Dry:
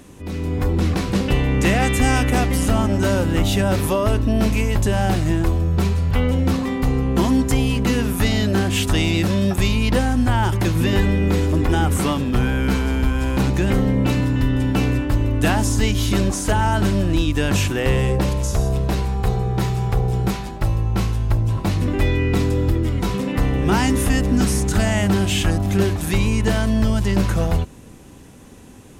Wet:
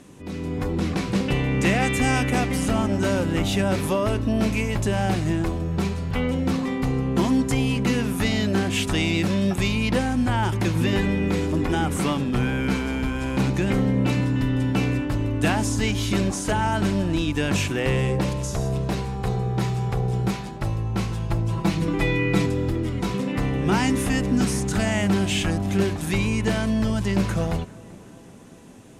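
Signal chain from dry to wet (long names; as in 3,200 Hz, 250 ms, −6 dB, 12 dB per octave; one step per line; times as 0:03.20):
low-pass filter 11,000 Hz 12 dB per octave
low shelf with overshoot 100 Hz −6 dB, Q 1.5
0:21.11–0:22.46: comb filter 6 ms, depth 85%
dynamic equaliser 2,300 Hz, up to +4 dB, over −40 dBFS, Q 4.5
on a send: tape delay 385 ms, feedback 73%, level −20.5 dB, low-pass 2,400 Hz
on the sum: level −3.5 dB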